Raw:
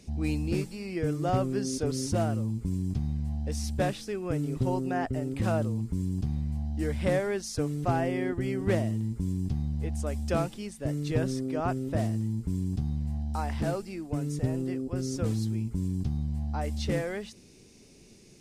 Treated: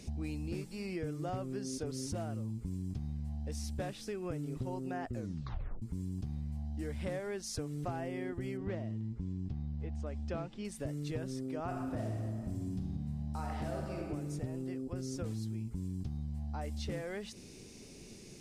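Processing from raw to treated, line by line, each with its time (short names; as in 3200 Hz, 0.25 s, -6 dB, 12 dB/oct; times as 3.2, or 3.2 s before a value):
5.08 tape stop 0.74 s
8.57–10.65 air absorption 150 m
11.64–14.03 reverb throw, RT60 1.6 s, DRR -1 dB
whole clip: compressor 4:1, threshold -41 dBFS; gain +3 dB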